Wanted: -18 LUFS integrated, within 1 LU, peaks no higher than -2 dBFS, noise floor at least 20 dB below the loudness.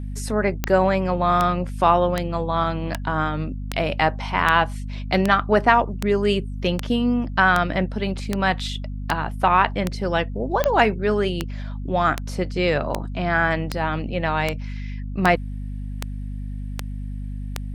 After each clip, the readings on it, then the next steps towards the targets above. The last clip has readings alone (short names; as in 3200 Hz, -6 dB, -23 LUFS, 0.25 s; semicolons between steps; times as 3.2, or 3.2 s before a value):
clicks 23; hum 50 Hz; harmonics up to 250 Hz; hum level -27 dBFS; loudness -22.0 LUFS; peak -1.0 dBFS; loudness target -18.0 LUFS
-> de-click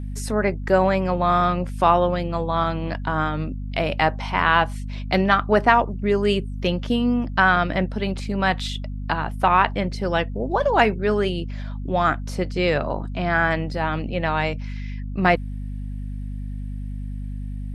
clicks 0; hum 50 Hz; harmonics up to 250 Hz; hum level -27 dBFS
-> notches 50/100/150/200/250 Hz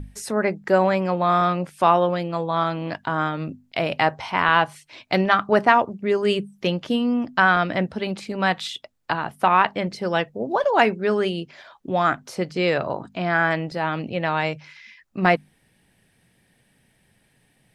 hum none; loudness -22.0 LUFS; peak -1.5 dBFS; loudness target -18.0 LUFS
-> gain +4 dB; limiter -2 dBFS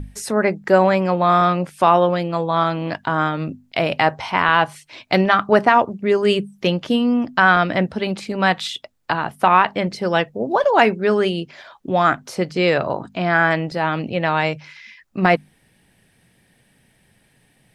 loudness -18.5 LUFS; peak -2.0 dBFS; noise floor -60 dBFS